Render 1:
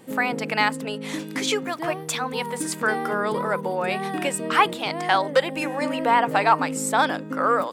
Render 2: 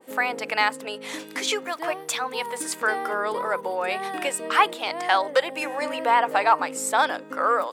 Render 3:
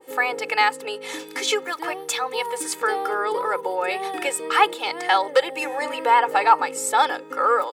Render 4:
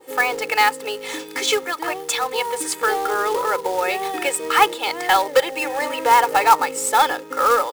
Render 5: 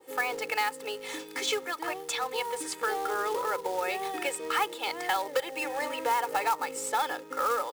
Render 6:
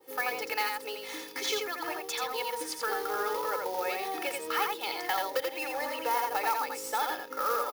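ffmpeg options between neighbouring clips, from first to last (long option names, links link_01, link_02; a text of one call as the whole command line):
ffmpeg -i in.wav -af "highpass=430,adynamicequalizer=threshold=0.0398:dfrequency=1600:dqfactor=0.7:tfrequency=1600:tqfactor=0.7:attack=5:release=100:ratio=0.375:range=2:mode=cutabove:tftype=highshelf" out.wav
ffmpeg -i in.wav -af "aecho=1:1:2.3:0.76" out.wav
ffmpeg -i in.wav -filter_complex "[0:a]asplit=2[link_01][link_02];[link_02]asoftclip=type=tanh:threshold=-13dB,volume=-8dB[link_03];[link_01][link_03]amix=inputs=2:normalize=0,acrusher=bits=3:mode=log:mix=0:aa=0.000001" out.wav
ffmpeg -i in.wav -filter_complex "[0:a]acrossover=split=95|6800[link_01][link_02][link_03];[link_01]acompressor=threshold=-57dB:ratio=4[link_04];[link_02]acompressor=threshold=-16dB:ratio=4[link_05];[link_03]acompressor=threshold=-31dB:ratio=4[link_06];[link_04][link_05][link_06]amix=inputs=3:normalize=0,volume=-8.5dB" out.wav
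ffmpeg -i in.wav -filter_complex "[0:a]asplit=2[link_01][link_02];[link_02]aecho=0:1:85:0.631[link_03];[link_01][link_03]amix=inputs=2:normalize=0,aexciter=amount=1.3:drive=3.6:freq=4500,volume=-3dB" out.wav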